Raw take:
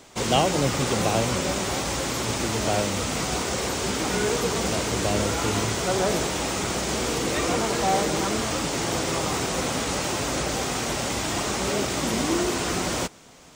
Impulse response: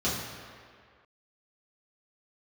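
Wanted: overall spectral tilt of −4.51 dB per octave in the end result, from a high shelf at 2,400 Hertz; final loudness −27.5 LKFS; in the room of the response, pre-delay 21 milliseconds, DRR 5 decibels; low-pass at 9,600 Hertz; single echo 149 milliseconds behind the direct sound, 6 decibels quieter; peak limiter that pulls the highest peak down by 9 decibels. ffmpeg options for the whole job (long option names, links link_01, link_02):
-filter_complex "[0:a]lowpass=9600,highshelf=frequency=2400:gain=-3,alimiter=limit=-17.5dB:level=0:latency=1,aecho=1:1:149:0.501,asplit=2[link_01][link_02];[1:a]atrim=start_sample=2205,adelay=21[link_03];[link_02][link_03]afir=irnorm=-1:irlink=0,volume=-15.5dB[link_04];[link_01][link_04]amix=inputs=2:normalize=0,volume=-3.5dB"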